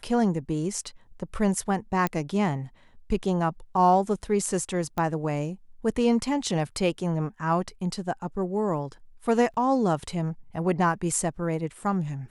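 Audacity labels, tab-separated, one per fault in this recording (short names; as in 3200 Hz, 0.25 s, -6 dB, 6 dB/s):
2.070000	2.070000	pop -13 dBFS
4.980000	4.980000	pop -16 dBFS
9.540000	9.540000	gap 3.2 ms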